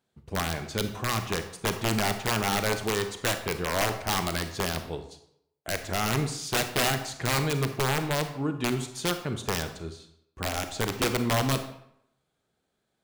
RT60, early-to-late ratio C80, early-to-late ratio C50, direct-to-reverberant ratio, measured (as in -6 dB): 0.75 s, 12.0 dB, 9.5 dB, 8.0 dB